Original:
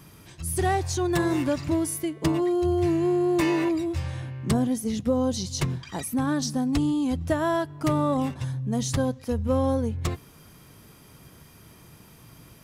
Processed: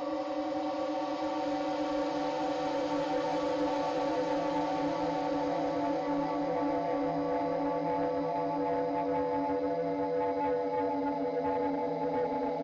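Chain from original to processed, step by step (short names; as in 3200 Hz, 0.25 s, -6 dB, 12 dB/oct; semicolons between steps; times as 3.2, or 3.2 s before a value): inharmonic rescaling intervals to 80%; HPF 330 Hz 12 dB/oct; echo 0.358 s -4.5 dB; Paulstretch 38×, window 0.25 s, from 7.79; soft clip -21 dBFS, distortion -17 dB; whine 580 Hz -35 dBFS; gain -4 dB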